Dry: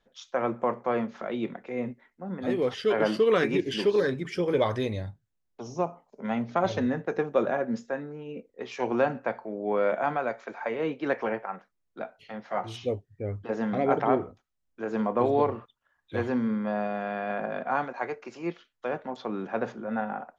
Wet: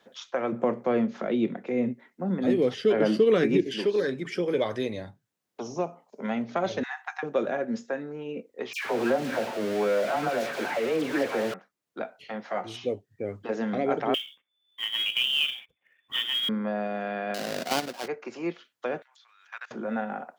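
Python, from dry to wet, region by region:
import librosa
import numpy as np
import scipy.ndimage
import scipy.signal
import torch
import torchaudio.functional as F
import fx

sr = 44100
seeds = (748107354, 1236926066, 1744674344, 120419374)

y = fx.chain(x, sr, fx.highpass(hz=47.0, slope=12),
    fx.low_shelf(hz=410.0, db=11.5), at=(0.52, 3.67))
y = fx.chain(y, sr, fx.brickwall_highpass(low_hz=710.0),
    fx.band_squash(depth_pct=100), at=(6.83, 7.23))
y = fx.chain(y, sr, fx.zero_step(step_db=-27.0),
    fx.high_shelf(hz=5600.0, db=-10.5),
    fx.dispersion(late='lows', ms=125.0, hz=1500.0), at=(8.73, 11.54))
y = fx.chain(y, sr, fx.freq_invert(carrier_hz=3500),
    fx.quant_float(bits=2), at=(14.14, 16.49))
y = fx.chain(y, sr, fx.halfwave_hold(),
    fx.peak_eq(hz=4700.0, db=7.0, octaves=0.96),
    fx.level_steps(step_db=11), at=(17.34, 18.08))
y = fx.chain(y, sr, fx.highpass(hz=1400.0, slope=24),
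    fx.level_steps(step_db=23),
    fx.high_shelf(hz=3800.0, db=10.0), at=(19.02, 19.71))
y = scipy.signal.sosfilt(scipy.signal.butter(2, 180.0, 'highpass', fs=sr, output='sos'), y)
y = fx.dynamic_eq(y, sr, hz=1000.0, q=1.7, threshold_db=-41.0, ratio=4.0, max_db=-6)
y = fx.band_squash(y, sr, depth_pct=40)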